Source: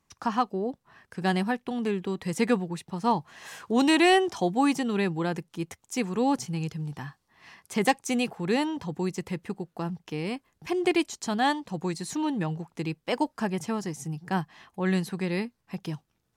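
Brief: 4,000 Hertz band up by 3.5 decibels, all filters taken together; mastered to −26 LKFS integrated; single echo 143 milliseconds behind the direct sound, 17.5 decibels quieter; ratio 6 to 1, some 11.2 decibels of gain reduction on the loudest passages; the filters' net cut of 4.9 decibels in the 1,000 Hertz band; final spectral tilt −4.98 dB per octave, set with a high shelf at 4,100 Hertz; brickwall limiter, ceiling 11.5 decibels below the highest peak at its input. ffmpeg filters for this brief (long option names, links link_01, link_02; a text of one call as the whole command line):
ffmpeg -i in.wav -af "equalizer=frequency=1000:width_type=o:gain=-7,equalizer=frequency=4000:width_type=o:gain=7.5,highshelf=frequency=4100:gain=-4,acompressor=threshold=-30dB:ratio=6,alimiter=level_in=8dB:limit=-24dB:level=0:latency=1,volume=-8dB,aecho=1:1:143:0.133,volume=14.5dB" out.wav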